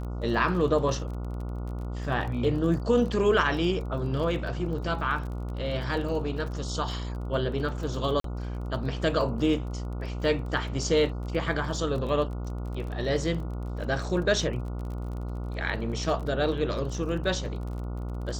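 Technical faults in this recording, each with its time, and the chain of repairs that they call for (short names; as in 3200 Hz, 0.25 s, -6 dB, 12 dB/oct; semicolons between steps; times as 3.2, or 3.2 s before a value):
buzz 60 Hz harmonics 24 -33 dBFS
crackle 29/s -36 dBFS
8.2–8.24 gap 43 ms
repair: de-click; de-hum 60 Hz, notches 24; interpolate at 8.2, 43 ms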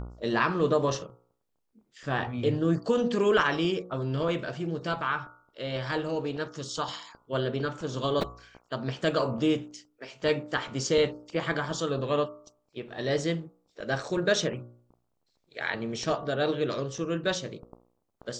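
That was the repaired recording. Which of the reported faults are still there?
none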